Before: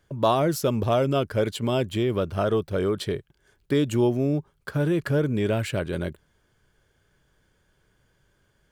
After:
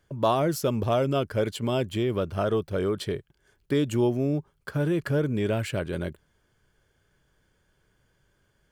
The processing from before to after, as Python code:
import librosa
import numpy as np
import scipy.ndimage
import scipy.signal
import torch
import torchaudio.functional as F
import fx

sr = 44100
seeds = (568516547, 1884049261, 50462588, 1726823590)

y = fx.notch(x, sr, hz=3800.0, q=22.0)
y = F.gain(torch.from_numpy(y), -2.0).numpy()